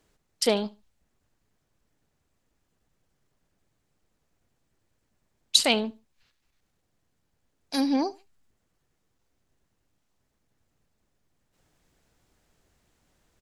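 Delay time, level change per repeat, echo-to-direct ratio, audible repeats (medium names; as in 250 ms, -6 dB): 72 ms, -13.0 dB, -21.5 dB, 2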